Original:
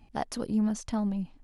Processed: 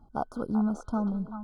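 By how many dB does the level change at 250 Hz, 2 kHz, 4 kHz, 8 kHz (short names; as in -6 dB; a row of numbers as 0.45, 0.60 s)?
0.0 dB, -2.0 dB, under -15 dB, under -10 dB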